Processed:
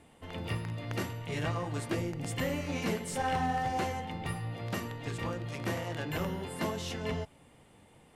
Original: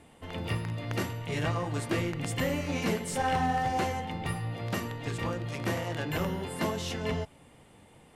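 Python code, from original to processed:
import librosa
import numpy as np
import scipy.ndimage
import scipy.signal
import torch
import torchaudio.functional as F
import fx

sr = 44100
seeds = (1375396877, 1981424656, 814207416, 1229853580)

y = fx.spec_box(x, sr, start_s=1.95, length_s=0.31, low_hz=930.0, high_hz=4500.0, gain_db=-6)
y = y * librosa.db_to_amplitude(-3.0)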